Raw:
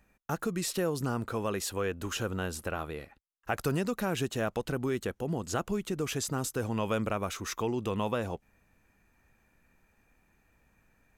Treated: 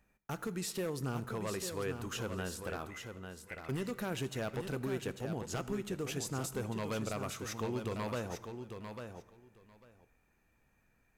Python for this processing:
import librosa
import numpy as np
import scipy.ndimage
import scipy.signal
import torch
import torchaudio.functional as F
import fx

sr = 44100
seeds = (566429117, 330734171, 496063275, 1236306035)

y = fx.ladder_bandpass(x, sr, hz=2100.0, resonance_pct=90, at=(2.87, 3.69))
y = 10.0 ** (-24.0 / 20.0) * (np.abs((y / 10.0 ** (-24.0 / 20.0) + 3.0) % 4.0 - 2.0) - 1.0)
y = fx.echo_feedback(y, sr, ms=847, feedback_pct=15, wet_db=-7.5)
y = fx.rev_fdn(y, sr, rt60_s=1.3, lf_ratio=0.95, hf_ratio=0.7, size_ms=46.0, drr_db=13.5)
y = y * 10.0 ** (-6.0 / 20.0)